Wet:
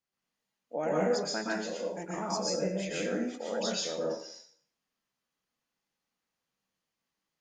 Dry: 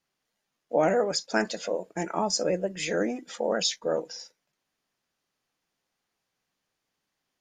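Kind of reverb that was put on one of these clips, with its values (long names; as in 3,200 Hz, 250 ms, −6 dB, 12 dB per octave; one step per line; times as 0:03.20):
dense smooth reverb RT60 0.53 s, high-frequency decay 0.95×, pre-delay 110 ms, DRR −5 dB
level −11 dB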